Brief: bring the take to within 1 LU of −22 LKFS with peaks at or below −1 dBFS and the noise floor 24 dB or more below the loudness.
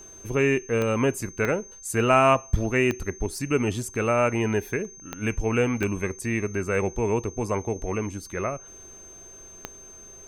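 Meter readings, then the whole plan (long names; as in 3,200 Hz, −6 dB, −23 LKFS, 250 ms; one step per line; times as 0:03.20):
number of clicks 6; interfering tone 6,300 Hz; level of the tone −44 dBFS; integrated loudness −25.5 LKFS; sample peak −6.5 dBFS; target loudness −22.0 LKFS
→ click removal
notch filter 6,300 Hz, Q 30
level +3.5 dB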